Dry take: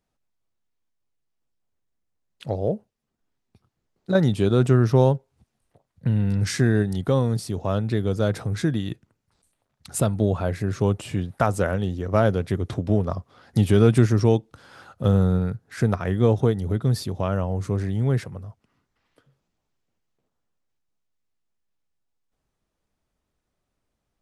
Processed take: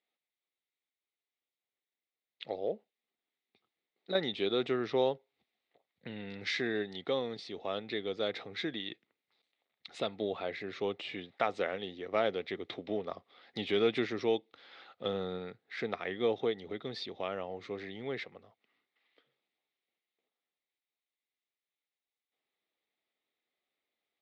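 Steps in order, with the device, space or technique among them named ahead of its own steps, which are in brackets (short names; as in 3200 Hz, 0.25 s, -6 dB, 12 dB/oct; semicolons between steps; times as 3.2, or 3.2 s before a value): phone earpiece (speaker cabinet 460–4100 Hz, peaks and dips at 600 Hz -5 dB, 990 Hz -9 dB, 1500 Hz -8 dB, 2100 Hz +8 dB, 3700 Hz +8 dB); bell 130 Hz -3.5 dB 0.88 oct; gain -4 dB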